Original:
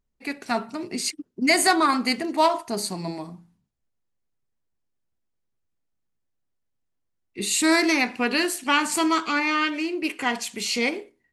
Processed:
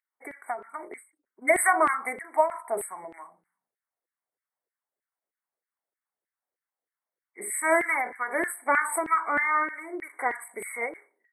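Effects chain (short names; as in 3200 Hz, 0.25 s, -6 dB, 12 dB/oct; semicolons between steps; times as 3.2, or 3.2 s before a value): brick-wall FIR band-stop 2300–7800 Hz; LFO high-pass saw down 3.2 Hz 420–2000 Hz; ending taper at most 170 dB/s; gain -2.5 dB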